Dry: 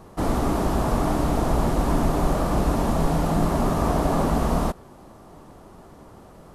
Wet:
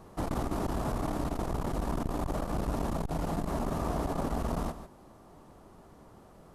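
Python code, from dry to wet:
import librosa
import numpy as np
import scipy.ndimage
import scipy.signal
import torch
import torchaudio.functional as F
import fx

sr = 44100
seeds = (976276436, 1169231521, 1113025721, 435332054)

y = fx.rider(x, sr, range_db=10, speed_s=0.5)
y = y + 10.0 ** (-14.0 / 20.0) * np.pad(y, (int(146 * sr / 1000.0), 0))[:len(y)]
y = fx.transformer_sat(y, sr, knee_hz=140.0)
y = y * librosa.db_to_amplitude(-8.0)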